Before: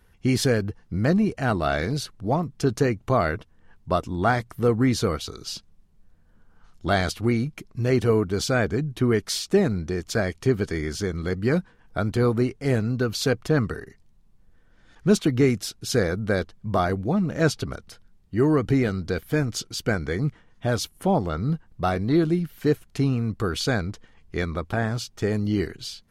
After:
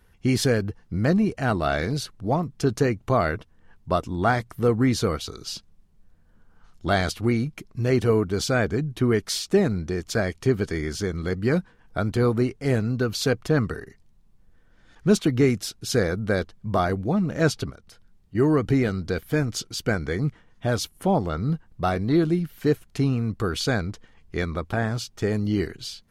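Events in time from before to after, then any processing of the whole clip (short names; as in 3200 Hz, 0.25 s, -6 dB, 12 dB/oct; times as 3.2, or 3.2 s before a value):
17.7–18.35 compressor 2:1, threshold -49 dBFS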